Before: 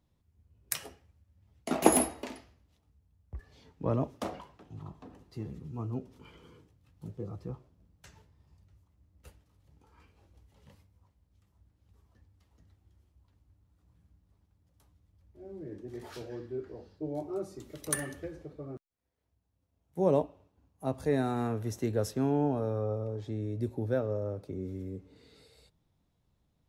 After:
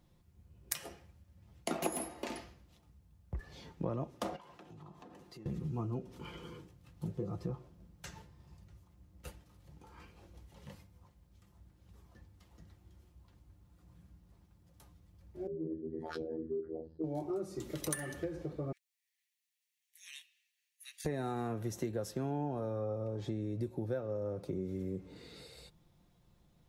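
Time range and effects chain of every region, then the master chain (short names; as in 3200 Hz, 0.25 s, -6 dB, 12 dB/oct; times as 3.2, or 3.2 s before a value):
4.36–5.46 HPF 240 Hz 6 dB/oct + compressor 4:1, threshold -58 dBFS
15.47–17.04 formant sharpening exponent 2 + HPF 49 Hz + robotiser 80.1 Hz
18.72–21.05 Chebyshev high-pass 1800 Hz, order 6 + notch 5100 Hz, Q 22
whole clip: comb 5.7 ms, depth 39%; compressor 6:1, threshold -41 dBFS; gain +6.5 dB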